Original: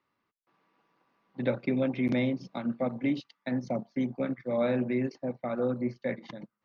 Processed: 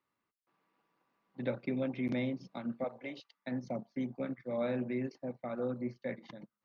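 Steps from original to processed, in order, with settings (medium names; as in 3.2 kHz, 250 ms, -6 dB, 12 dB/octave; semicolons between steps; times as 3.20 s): 2.84–3.34 s: resonant low shelf 360 Hz -11.5 dB, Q 1.5; trim -6.5 dB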